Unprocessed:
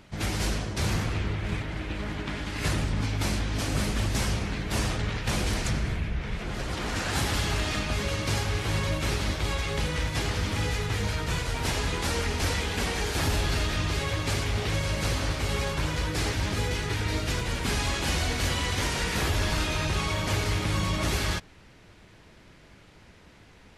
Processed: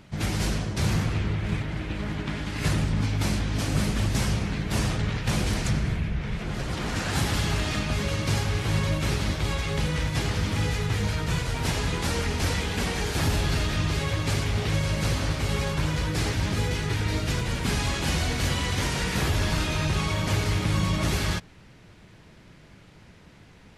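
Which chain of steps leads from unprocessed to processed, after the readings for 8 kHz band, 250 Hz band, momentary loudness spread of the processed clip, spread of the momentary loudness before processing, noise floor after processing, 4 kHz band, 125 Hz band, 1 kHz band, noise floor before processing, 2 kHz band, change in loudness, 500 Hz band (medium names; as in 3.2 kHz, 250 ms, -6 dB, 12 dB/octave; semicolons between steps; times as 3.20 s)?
0.0 dB, +3.5 dB, 3 LU, 4 LU, -51 dBFS, 0.0 dB, +3.5 dB, 0.0 dB, -53 dBFS, 0.0 dB, +1.5 dB, +0.5 dB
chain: peaking EQ 150 Hz +6 dB 1.2 oct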